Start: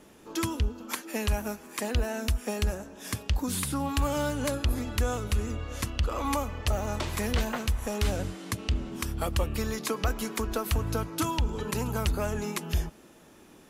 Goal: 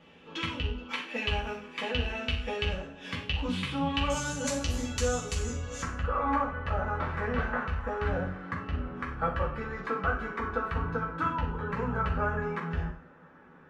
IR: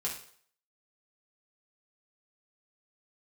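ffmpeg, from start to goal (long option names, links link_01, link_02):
-filter_complex "[0:a]asetnsamples=nb_out_samples=441:pad=0,asendcmd='4.1 lowpass f 7000;5.82 lowpass f 1500',lowpass=frequency=2900:width_type=q:width=2.9[link_01];[1:a]atrim=start_sample=2205,afade=type=out:start_time=0.35:duration=0.01,atrim=end_sample=15876,asetrate=48510,aresample=44100[link_02];[link_01][link_02]afir=irnorm=-1:irlink=0,volume=-3.5dB"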